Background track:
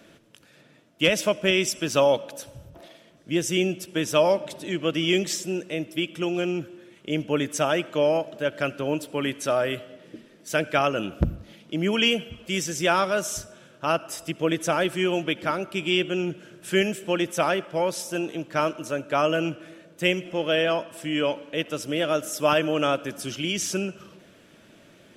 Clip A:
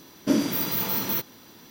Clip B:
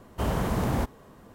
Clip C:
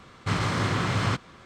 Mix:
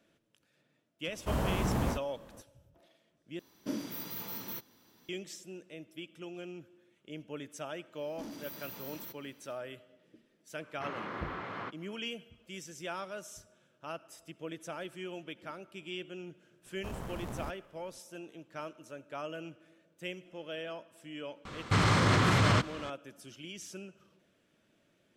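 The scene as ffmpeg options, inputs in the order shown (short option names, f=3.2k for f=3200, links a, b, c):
-filter_complex "[2:a]asplit=2[a][b];[1:a]asplit=2[c][d];[3:a]asplit=2[e][f];[0:a]volume=-18dB[g];[a]asplit=2[h][i];[i]adelay=47,volume=-4dB[j];[h][j]amix=inputs=2:normalize=0[k];[d]asoftclip=type=tanh:threshold=-24dB[l];[e]highpass=310,lowpass=2k[m];[b]aeval=exprs='if(lt(val(0),0),0.447*val(0),val(0))':c=same[n];[f]alimiter=level_in=21dB:limit=-1dB:release=50:level=0:latency=1[o];[g]asplit=2[p][q];[p]atrim=end=3.394[r];[c]atrim=end=1.7,asetpts=PTS-STARTPTS,volume=-14.5dB[s];[q]atrim=start=5.086[t];[k]atrim=end=1.34,asetpts=PTS-STARTPTS,volume=-5.5dB,afade=t=in:d=0.004:c=hsin,afade=t=out:st=1.336:d=0.004:c=hsin,adelay=1080[u];[l]atrim=end=1.7,asetpts=PTS-STARTPTS,volume=-16.5dB,afade=t=in:d=0.1,afade=t=out:st=1.6:d=0.1,adelay=7910[v];[m]atrim=end=1.45,asetpts=PTS-STARTPTS,volume=-10dB,afade=t=in:d=0.004:c=hsin,afade=t=out:st=1.446:d=0.004:c=hsin,adelay=10540[w];[n]atrim=end=1.34,asetpts=PTS-STARTPTS,volume=-12dB,afade=t=in:d=0.004:c=hsin,afade=t=out:st=1.336:d=0.004:c=hsin,adelay=16650[x];[o]atrim=end=1.45,asetpts=PTS-STARTPTS,volume=-16dB,afade=t=in:d=0.004:c=hsin,afade=t=out:st=1.446:d=0.004:c=hsin,adelay=21450[y];[r][s]acrossfade=d=0.004:c1=hsin:c2=hsin[z];[z][t]acrossfade=d=0.004:c1=hsin:c2=hsin[aa];[aa][u][v][w][x][y]amix=inputs=6:normalize=0"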